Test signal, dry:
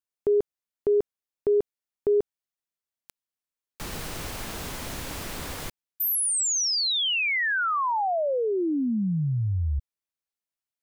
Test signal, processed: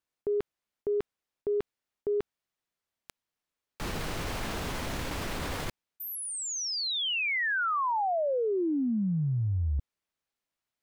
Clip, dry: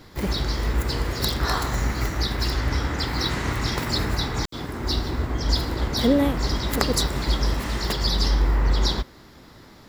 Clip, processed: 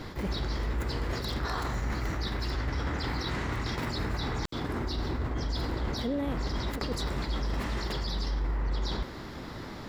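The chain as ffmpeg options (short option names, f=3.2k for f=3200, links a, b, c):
-af "areverse,acompressor=threshold=-34dB:ratio=8:attack=0.79:release=135:knee=1:detection=peak,areverse,highshelf=f=5.9k:g=-11,volume=7.5dB"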